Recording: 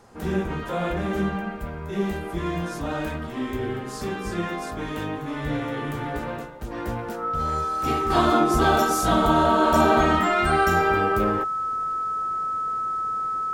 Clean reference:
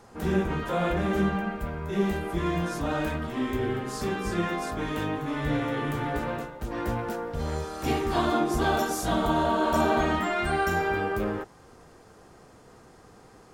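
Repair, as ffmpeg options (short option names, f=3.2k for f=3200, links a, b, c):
-af "bandreject=f=1.3k:w=30,asetnsamples=n=441:p=0,asendcmd='8.1 volume volume -5dB',volume=0dB"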